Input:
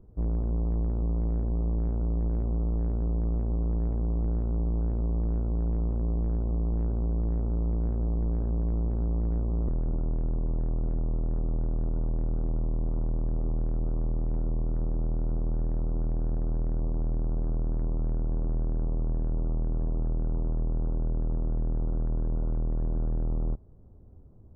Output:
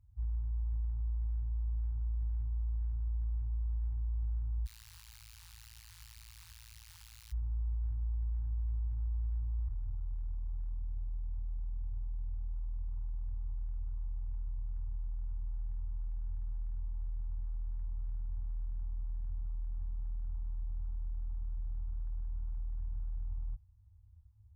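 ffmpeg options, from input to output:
-filter_complex "[0:a]asplit=3[s0][s1][s2];[s0]afade=t=out:st=4.65:d=0.02[s3];[s1]aeval=exprs='(mod(70.8*val(0)+1,2)-1)/70.8':c=same,afade=t=in:st=4.65:d=0.02,afade=t=out:st=7.31:d=0.02[s4];[s2]afade=t=in:st=7.31:d=0.02[s5];[s3][s4][s5]amix=inputs=3:normalize=0,asettb=1/sr,asplit=3[s6][s7][s8];[s6]atrim=end=10.784[s9];[s7]atrim=start=10.78:end=12.52,asetpts=PTS-STARTPTS,afade=t=in:d=0.004:c=qsin,afade=t=out:st=1.736:d=0.004:c=qsin,lowpass=1200[s10];[s8]atrim=start=12.516[s11];[s9][s10]acrossfade=d=0.004:c1=hsin:c2=qsin[s12];[s12][s11]acrossfade=d=0.004:c1=qsin:c2=hsin,highpass=46,afftfilt=real='re*(1-between(b*sr/4096,110,790))':imag='im*(1-between(b*sr/4096,110,790))':win_size=4096:overlap=0.75,equalizer=f=1000:t=o:w=2.7:g=-13.5,volume=0.562"

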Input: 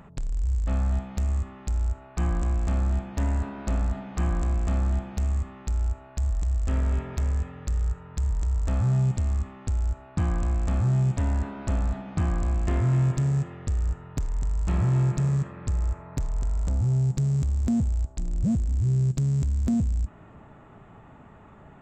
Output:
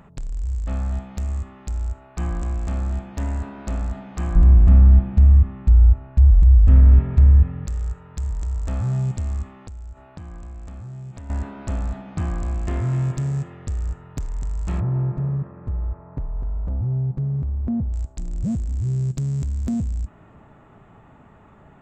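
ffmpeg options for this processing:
-filter_complex "[0:a]asettb=1/sr,asplit=3[s0][s1][s2];[s0]atrim=end=4.354[s3];[s1]atrim=start=4.35:end=7.66,asetpts=PTS-STARTPTS,afade=t=in:d=0.004:c=qsin,afade=t=out:st=3.306:d=0.004:c=qsin,bass=f=250:g=14,treble=f=4000:g=-15[s4];[s2]atrim=start=7.656[s5];[s3][s4]acrossfade=d=0.004:c1=hsin:c2=qsin[s6];[s6][s5]acrossfade=d=0.004:c1=qsin:c2=hsin,asettb=1/sr,asplit=3[s7][s8][s9];[s7]atrim=end=9.544[s10];[s8]atrim=start=9.54:end=11.3,asetpts=PTS-STARTPTS,afade=t=in:d=0.004:c=qsin,afade=t=out:st=1.756:d=0.004:c=qsin,acompressor=threshold=0.0224:ratio=12:attack=3.2:release=140:knee=1:detection=peak[s11];[s9]atrim=start=11.296[s12];[s10][s11]acrossfade=d=0.004:c1=hsin:c2=qsin[s13];[s13][s12]acrossfade=d=0.004:c1=qsin:c2=hsin,asettb=1/sr,asplit=3[s14][s15][s16];[s14]atrim=end=14.804[s17];[s15]atrim=start=14.8:end=17.93,asetpts=PTS-STARTPTS,afade=t=in:d=0.004:c=qsin,afade=t=out:st=3.126:d=0.004:c=qsin,lowpass=1100[s18];[s16]atrim=start=17.926[s19];[s17][s18]acrossfade=d=0.004:c1=hsin:c2=qsin[s20];[s20][s19]acrossfade=d=0.004:c1=qsin:c2=hsin"

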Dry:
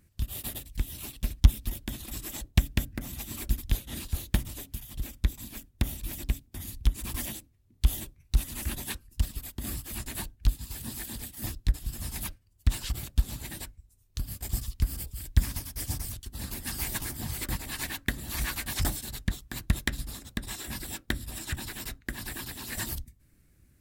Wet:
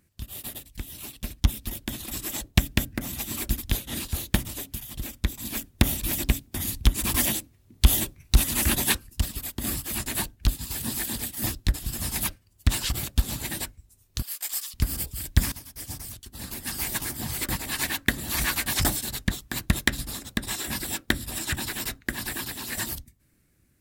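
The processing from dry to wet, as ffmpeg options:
-filter_complex "[0:a]asettb=1/sr,asplit=3[s0][s1][s2];[s0]atrim=end=14.224[s3];[s1]atrim=start=14.22:end=14.74,asetpts=PTS-STARTPTS,afade=t=in:d=0.004:c=qsin,afade=t=out:st=0.516:d=0.004:c=qsin,highpass=1200[s4];[s2]atrim=start=14.736[s5];[s3][s4]acrossfade=d=0.004:c1=hsin:c2=qsin[s6];[s6][s5]acrossfade=d=0.004:c1=qsin:c2=hsin,asplit=4[s7][s8][s9][s10];[s7]atrim=end=5.452[s11];[s8]atrim=start=5.448:end=9.102,asetpts=PTS-STARTPTS,volume=1.88[s12];[s9]atrim=start=9.098:end=15.52,asetpts=PTS-STARTPTS,afade=t=out:st=6.418:d=0.004:c=hsin:silence=0.223872[s13];[s10]atrim=start=15.52,asetpts=PTS-STARTPTS,afade=t=in:d=2.5:silence=0.223872[s14];[s11][s12]acrossfade=d=0.004:c1=hsin:c2=hsin[s15];[s13][s14]concat=n=2:v=0:a=1[s16];[s15][s16]acrossfade=d=0.004:c1=hsin:c2=hsin,lowshelf=f=89:g=-10.5,dynaudnorm=f=300:g=11:m=2.82"

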